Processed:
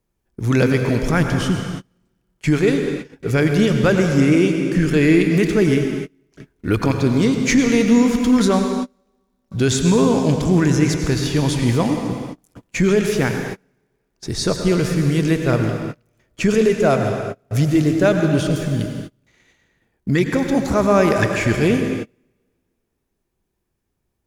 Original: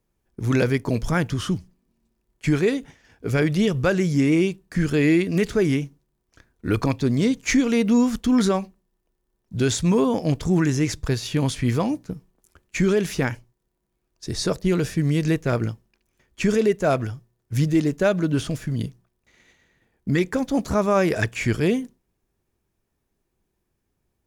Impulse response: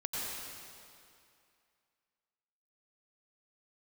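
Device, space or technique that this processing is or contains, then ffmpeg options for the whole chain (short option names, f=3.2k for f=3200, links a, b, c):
keyed gated reverb: -filter_complex "[0:a]asplit=3[a][b][c];[1:a]atrim=start_sample=2205[d];[b][d]afir=irnorm=-1:irlink=0[e];[c]apad=whole_len=1070026[f];[e][f]sidechaingate=range=-33dB:threshold=-51dB:ratio=16:detection=peak,volume=-3.5dB[g];[a][g]amix=inputs=2:normalize=0"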